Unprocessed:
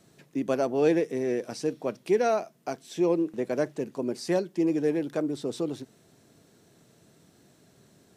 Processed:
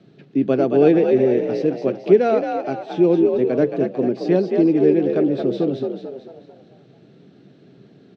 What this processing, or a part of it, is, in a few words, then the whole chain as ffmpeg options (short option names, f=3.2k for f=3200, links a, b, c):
frequency-shifting delay pedal into a guitar cabinet: -filter_complex "[0:a]asplit=7[a][b][c][d][e][f][g];[b]adelay=222,afreqshift=55,volume=-5.5dB[h];[c]adelay=444,afreqshift=110,volume=-12.2dB[i];[d]adelay=666,afreqshift=165,volume=-19dB[j];[e]adelay=888,afreqshift=220,volume=-25.7dB[k];[f]adelay=1110,afreqshift=275,volume=-32.5dB[l];[g]adelay=1332,afreqshift=330,volume=-39.2dB[m];[a][h][i][j][k][l][m]amix=inputs=7:normalize=0,highpass=110,equalizer=f=130:t=q:w=4:g=9,equalizer=f=190:t=q:w=4:g=7,equalizer=f=280:t=q:w=4:g=5,equalizer=f=400:t=q:w=4:g=6,equalizer=f=1k:t=q:w=4:g=-8,equalizer=f=1.9k:t=q:w=4:g=-4,lowpass=f=3.9k:w=0.5412,lowpass=f=3.9k:w=1.3066,volume=5dB"